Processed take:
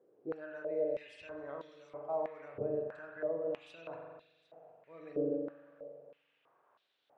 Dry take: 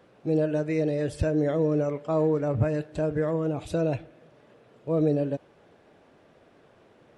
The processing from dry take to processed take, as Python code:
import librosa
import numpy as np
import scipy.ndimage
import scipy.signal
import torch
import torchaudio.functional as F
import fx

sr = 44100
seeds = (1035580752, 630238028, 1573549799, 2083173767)

y = x + 10.0 ** (-23.5 / 20.0) * np.pad(x, (int(755 * sr / 1000.0), 0))[:len(x)]
y = fx.rev_spring(y, sr, rt60_s=1.8, pass_ms=(42,), chirp_ms=55, drr_db=0.5)
y = fx.filter_held_bandpass(y, sr, hz=3.1, low_hz=410.0, high_hz=3800.0)
y = y * 10.0 ** (-4.5 / 20.0)